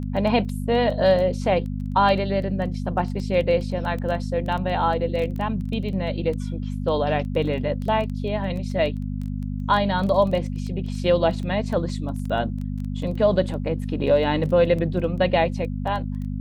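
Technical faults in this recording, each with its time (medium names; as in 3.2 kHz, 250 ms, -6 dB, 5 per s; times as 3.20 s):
crackle 11 per s -28 dBFS
hum 50 Hz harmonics 5 -28 dBFS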